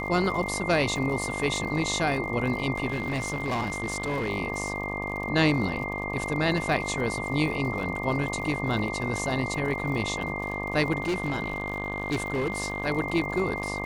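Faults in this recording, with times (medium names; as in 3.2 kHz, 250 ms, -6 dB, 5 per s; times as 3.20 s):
buzz 50 Hz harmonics 24 -34 dBFS
crackle 83 per s -35 dBFS
whine 2.1 kHz -33 dBFS
2.90–4.29 s: clipped -24.5 dBFS
8.79 s: dropout 2.9 ms
11.02–12.85 s: clipped -23 dBFS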